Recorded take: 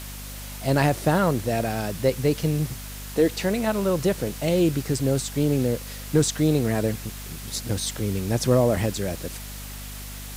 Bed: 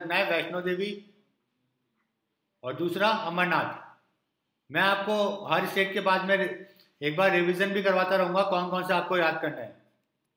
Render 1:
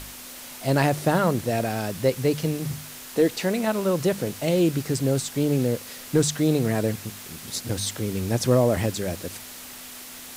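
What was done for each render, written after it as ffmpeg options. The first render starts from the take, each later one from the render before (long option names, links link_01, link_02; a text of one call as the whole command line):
ffmpeg -i in.wav -af "bandreject=frequency=50:width_type=h:width=4,bandreject=frequency=100:width_type=h:width=4,bandreject=frequency=150:width_type=h:width=4,bandreject=frequency=200:width_type=h:width=4" out.wav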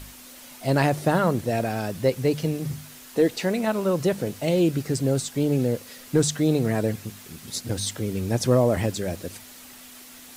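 ffmpeg -i in.wav -af "afftdn=noise_reduction=6:noise_floor=-41" out.wav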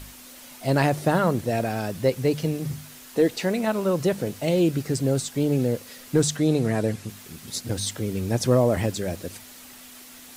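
ffmpeg -i in.wav -filter_complex "[0:a]asettb=1/sr,asplit=3[link_01][link_02][link_03];[link_01]atrim=end=6.374[link_04];[link_02]atrim=start=6.37:end=7.09,asetpts=PTS-STARTPTS,afade=type=in:duration=0.004:curve=qsin,afade=type=out:start_time=0.716:duration=0.004:curve=qsin,lowpass=frequency=12000:width=0.5412,lowpass=frequency=12000:width=1.3066[link_05];[link_03]atrim=start=7.086[link_06];[link_04][link_05]acrossfade=duration=0.004:curve1=hsin:curve2=qsin[link_07];[link_07][link_06]acrossfade=duration=0.004:curve1=qsin:curve2=hsin" out.wav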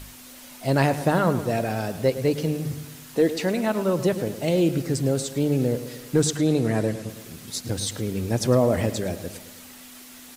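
ffmpeg -i in.wav -filter_complex "[0:a]asplit=2[link_01][link_02];[link_02]adelay=108,lowpass=frequency=3800:poles=1,volume=-12.5dB,asplit=2[link_03][link_04];[link_04]adelay=108,lowpass=frequency=3800:poles=1,volume=0.55,asplit=2[link_05][link_06];[link_06]adelay=108,lowpass=frequency=3800:poles=1,volume=0.55,asplit=2[link_07][link_08];[link_08]adelay=108,lowpass=frequency=3800:poles=1,volume=0.55,asplit=2[link_09][link_10];[link_10]adelay=108,lowpass=frequency=3800:poles=1,volume=0.55,asplit=2[link_11][link_12];[link_12]adelay=108,lowpass=frequency=3800:poles=1,volume=0.55[link_13];[link_01][link_03][link_05][link_07][link_09][link_11][link_13]amix=inputs=7:normalize=0" out.wav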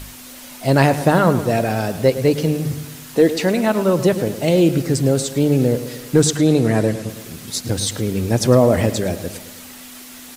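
ffmpeg -i in.wav -af "volume=6.5dB" out.wav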